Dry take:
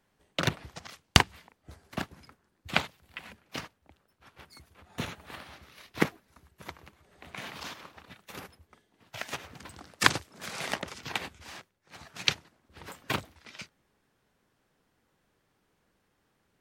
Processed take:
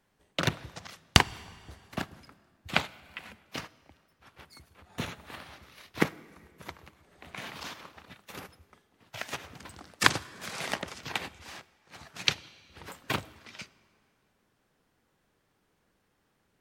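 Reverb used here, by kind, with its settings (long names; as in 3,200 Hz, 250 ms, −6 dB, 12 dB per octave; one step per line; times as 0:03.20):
dense smooth reverb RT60 2.2 s, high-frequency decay 0.8×, DRR 19.5 dB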